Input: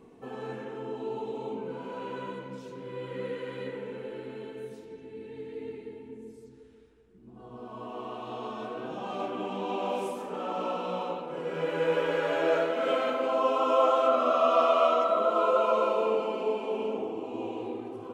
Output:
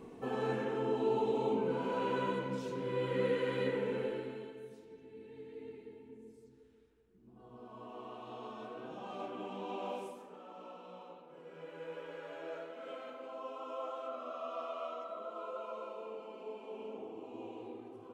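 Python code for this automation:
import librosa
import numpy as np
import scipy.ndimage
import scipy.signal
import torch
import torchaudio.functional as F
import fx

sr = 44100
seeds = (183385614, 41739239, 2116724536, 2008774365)

y = fx.gain(x, sr, db=fx.line((4.03, 3.0), (4.6, -9.0), (9.91, -9.0), (10.44, -18.5), (16.12, -18.5), (17.22, -11.0)))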